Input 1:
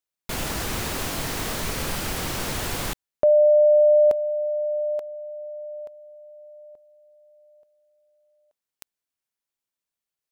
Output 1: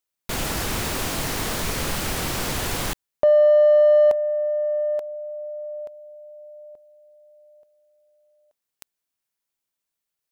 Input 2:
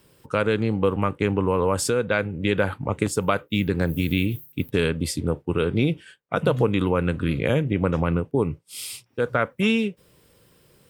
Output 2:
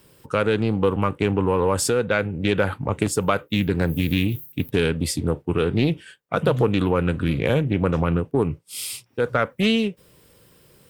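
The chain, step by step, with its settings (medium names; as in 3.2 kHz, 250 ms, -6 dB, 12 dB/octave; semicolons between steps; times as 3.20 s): treble shelf 10 kHz +3.5 dB; in parallel at -9 dB: saturation -23 dBFS; on the sum: loudspeaker Doppler distortion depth 0.16 ms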